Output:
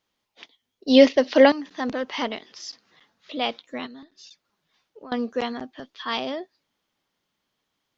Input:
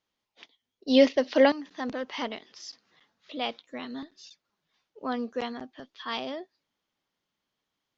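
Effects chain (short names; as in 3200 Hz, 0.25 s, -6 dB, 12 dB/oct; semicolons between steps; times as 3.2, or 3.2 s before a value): 3.86–5.12 compressor 4:1, threshold -49 dBFS, peak gain reduction 18.5 dB; gain +5.5 dB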